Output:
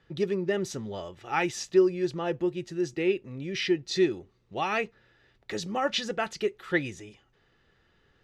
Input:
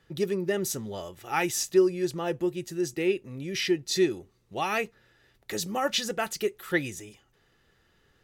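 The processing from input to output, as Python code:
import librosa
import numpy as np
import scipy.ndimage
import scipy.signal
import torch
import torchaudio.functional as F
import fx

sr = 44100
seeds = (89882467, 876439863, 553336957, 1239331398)

y = scipy.signal.sosfilt(scipy.signal.butter(2, 4500.0, 'lowpass', fs=sr, output='sos'), x)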